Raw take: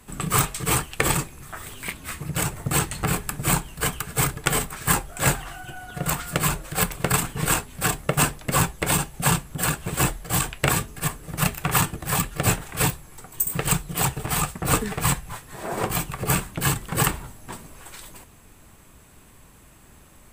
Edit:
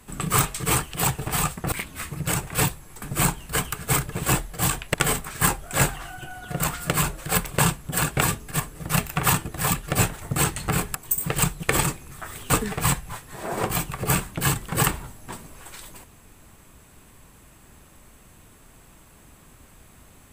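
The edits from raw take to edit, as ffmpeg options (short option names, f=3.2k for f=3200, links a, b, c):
-filter_complex "[0:a]asplit=13[a][b][c][d][e][f][g][h][i][j][k][l][m];[a]atrim=end=0.942[n];[b]atrim=start=13.918:end=14.702[o];[c]atrim=start=1.808:end=2.562[p];[d]atrim=start=12.688:end=13.242[q];[e]atrim=start=3.298:end=4.402[r];[f]atrim=start=9.828:end=10.652[s];[g]atrim=start=4.398:end=7.052[t];[h]atrim=start=9.248:end=9.832[u];[i]atrim=start=10.648:end=12.692[v];[j]atrim=start=2.558:end=3.302[w];[k]atrim=start=13.238:end=13.922[x];[l]atrim=start=0.938:end=1.812[y];[m]atrim=start=14.698[z];[n][o]acrossfade=d=0.004:c1=hsin:c2=hsin[aa];[aa][p]acrossfade=d=0.004:c1=hsin:c2=hsin[ab];[ab][q]acrossfade=d=0.004:c1=hsin:c2=hsin[ac];[ac][r]acrossfade=d=0.004:c1=hsin:c2=hsin[ad];[ad][s]acrossfade=d=0.004:c1=hsin:c2=hsin[ae];[ae][t]acrossfade=d=0.004:c1=hsin:c2=hsin[af];[af][u]acrossfade=d=0.004:c1=hsin:c2=hsin[ag];[ag][v]acrossfade=d=0.004:c1=hsin:c2=hsin[ah];[ah][w]acrossfade=d=0.004:c1=hsin:c2=hsin[ai];[ai][x]acrossfade=d=0.004:c1=hsin:c2=hsin[aj];[aj][y]acrossfade=d=0.004:c1=hsin:c2=hsin[ak];[ak][z]acrossfade=d=0.004:c1=hsin:c2=hsin"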